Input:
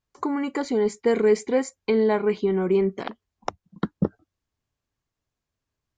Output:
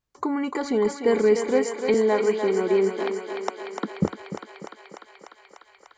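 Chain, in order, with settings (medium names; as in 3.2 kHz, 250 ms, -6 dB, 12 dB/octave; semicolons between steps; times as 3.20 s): 1.94–3.99 s: steep high-pass 220 Hz 36 dB/octave; thinning echo 297 ms, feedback 81%, high-pass 370 Hz, level -6 dB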